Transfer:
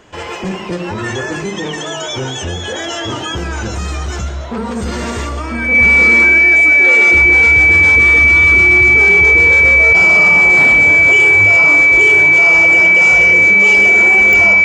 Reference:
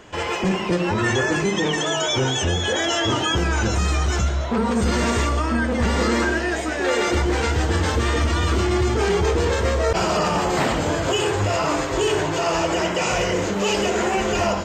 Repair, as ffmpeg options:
-af "adeclick=t=4,bandreject=f=2300:w=30"

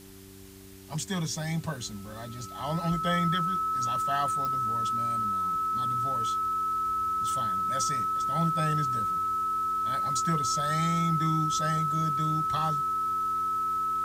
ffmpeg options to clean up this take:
-af "adeclick=t=4,bandreject=f=96.5:t=h:w=4,bandreject=f=193:t=h:w=4,bandreject=f=289.5:t=h:w=4,bandreject=f=386:t=h:w=4,bandreject=f=1300:w=30,afwtdn=0.0022"

